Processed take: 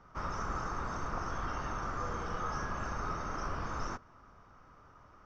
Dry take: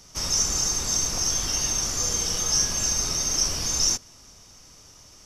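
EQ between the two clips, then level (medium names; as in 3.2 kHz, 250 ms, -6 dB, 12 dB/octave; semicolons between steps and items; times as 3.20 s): resonant low-pass 1.3 kHz, resonance Q 3.6; -5.5 dB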